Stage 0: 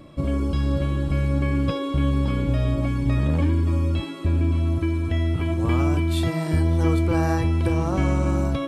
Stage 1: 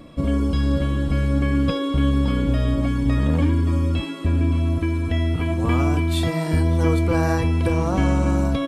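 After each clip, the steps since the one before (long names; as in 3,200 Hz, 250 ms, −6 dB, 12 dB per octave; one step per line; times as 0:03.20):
comb filter 4.2 ms, depth 36%
level +2.5 dB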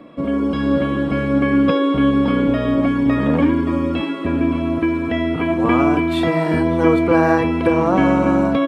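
three-way crossover with the lows and the highs turned down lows −21 dB, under 180 Hz, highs −17 dB, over 2,900 Hz
automatic gain control gain up to 4.5 dB
level +4 dB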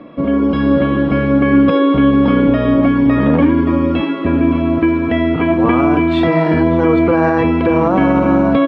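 brickwall limiter −8.5 dBFS, peak gain reduction 6.5 dB
high-frequency loss of the air 170 metres
level +5.5 dB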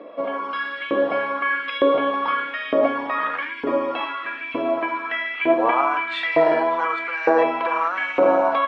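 auto-filter high-pass saw up 1.1 Hz 450–2,500 Hz
flanger 0.85 Hz, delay 9.1 ms, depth 4.8 ms, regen −72%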